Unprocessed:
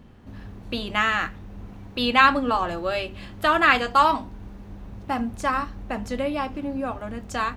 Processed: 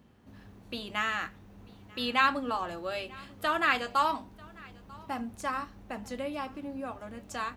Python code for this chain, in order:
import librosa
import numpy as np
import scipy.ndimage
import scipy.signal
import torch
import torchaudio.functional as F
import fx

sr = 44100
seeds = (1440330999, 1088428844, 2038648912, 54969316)

p1 = fx.highpass(x, sr, hz=110.0, slope=6)
p2 = fx.high_shelf(p1, sr, hz=6600.0, db=7.0)
p3 = p2 + fx.echo_single(p2, sr, ms=942, db=-23.5, dry=0)
y = F.gain(torch.from_numpy(p3), -9.0).numpy()